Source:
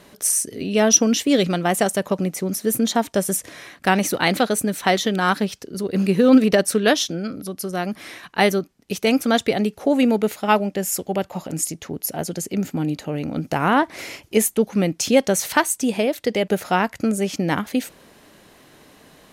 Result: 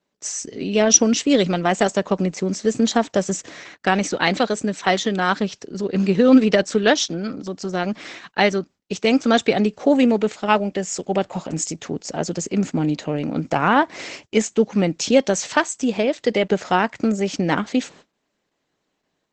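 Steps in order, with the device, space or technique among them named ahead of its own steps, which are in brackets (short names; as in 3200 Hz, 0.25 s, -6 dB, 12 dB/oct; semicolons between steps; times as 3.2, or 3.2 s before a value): 13.54–14.51 dynamic EQ 370 Hz, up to -4 dB, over -31 dBFS, Q 2.9; video call (HPF 130 Hz 12 dB/oct; AGC gain up to 3.5 dB; gate -41 dBFS, range -26 dB; Opus 12 kbps 48000 Hz)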